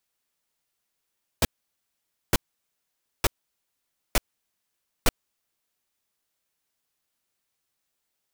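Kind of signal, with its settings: noise bursts pink, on 0.03 s, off 0.88 s, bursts 5, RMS -18.5 dBFS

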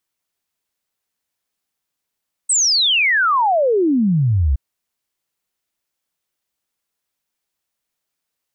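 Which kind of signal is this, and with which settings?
log sweep 8500 Hz -> 62 Hz 2.07 s -12.5 dBFS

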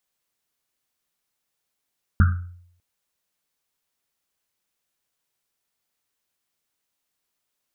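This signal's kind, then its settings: Risset drum length 0.60 s, pitch 88 Hz, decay 0.68 s, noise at 1400 Hz, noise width 330 Hz, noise 20%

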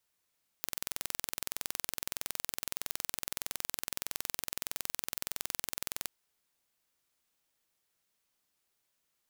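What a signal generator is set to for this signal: pulse train 21.6/s, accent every 0, -7 dBFS 5.46 s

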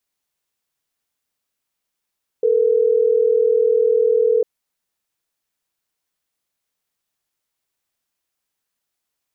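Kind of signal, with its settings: call progress tone ringback tone, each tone -15.5 dBFS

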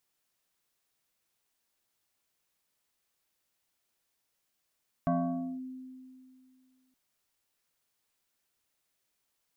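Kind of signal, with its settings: FM tone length 1.87 s, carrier 258 Hz, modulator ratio 1.67, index 1.5, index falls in 0.53 s linear, decay 2.37 s, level -23.5 dB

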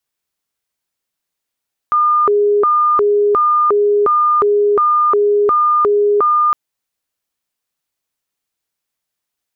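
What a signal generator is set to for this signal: siren hi-lo 412–1210 Hz 1.4/s sine -9.5 dBFS 4.61 s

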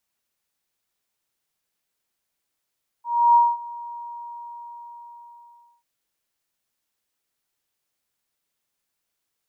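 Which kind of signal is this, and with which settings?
ADSR sine 947 Hz, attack 0.308 s, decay 0.222 s, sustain -21.5 dB, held 0.89 s, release 1.9 s -10.5 dBFS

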